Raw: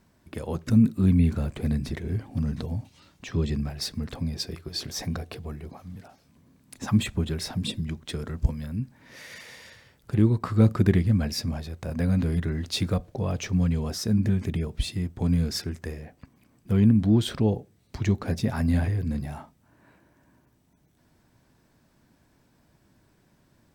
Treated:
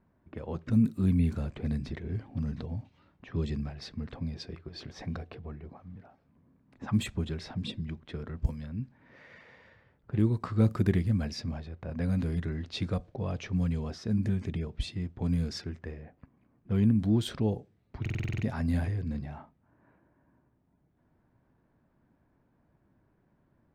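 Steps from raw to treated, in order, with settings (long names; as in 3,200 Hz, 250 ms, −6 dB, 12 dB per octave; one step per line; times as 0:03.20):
low-pass that shuts in the quiet parts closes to 1,500 Hz, open at −18 dBFS
buffer that repeats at 0:18.01, samples 2,048, times 8
level −5.5 dB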